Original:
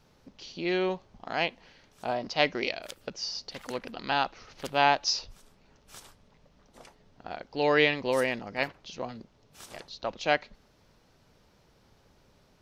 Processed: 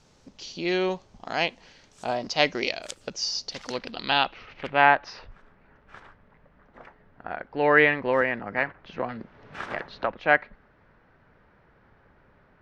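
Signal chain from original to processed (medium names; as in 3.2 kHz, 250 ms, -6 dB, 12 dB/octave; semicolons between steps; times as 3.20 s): low-pass sweep 7.6 kHz -> 1.7 kHz, 3.29–4.96 s; 8.21–10.07 s: three bands compressed up and down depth 70%; trim +2.5 dB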